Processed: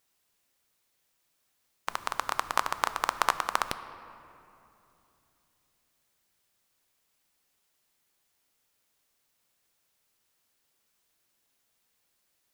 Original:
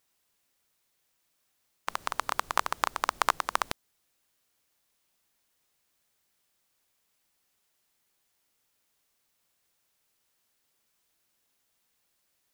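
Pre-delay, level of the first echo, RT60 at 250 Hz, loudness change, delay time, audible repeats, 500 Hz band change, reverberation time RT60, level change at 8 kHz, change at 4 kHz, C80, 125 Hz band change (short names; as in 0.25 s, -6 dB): 7 ms, none, 3.7 s, 0.0 dB, none, none, +0.5 dB, 2.9 s, 0.0 dB, 0.0 dB, 13.5 dB, +0.5 dB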